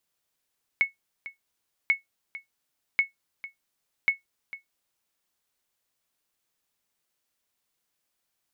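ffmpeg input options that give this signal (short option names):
-f lavfi -i "aevalsrc='0.224*(sin(2*PI*2200*mod(t,1.09))*exp(-6.91*mod(t,1.09)/0.14)+0.15*sin(2*PI*2200*max(mod(t,1.09)-0.45,0))*exp(-6.91*max(mod(t,1.09)-0.45,0)/0.14))':d=4.36:s=44100"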